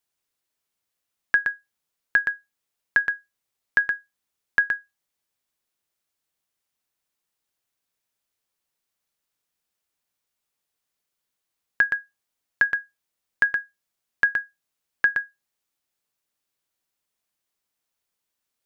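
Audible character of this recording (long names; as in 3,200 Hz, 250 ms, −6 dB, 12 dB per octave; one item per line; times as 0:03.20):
background noise floor −83 dBFS
spectral slope +0.5 dB per octave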